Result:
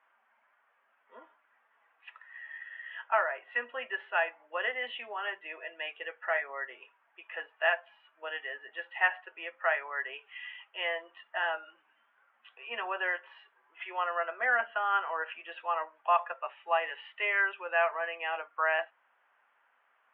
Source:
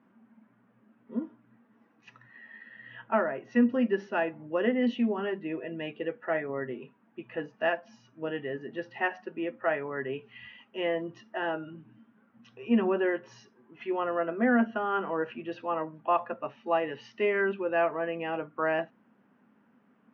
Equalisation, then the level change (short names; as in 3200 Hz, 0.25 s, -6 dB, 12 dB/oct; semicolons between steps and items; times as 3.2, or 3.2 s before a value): HPF 660 Hz 24 dB/oct; Chebyshev low-pass 3400 Hz, order 5; bell 2200 Hz +7 dB 2.9 oct; -2.0 dB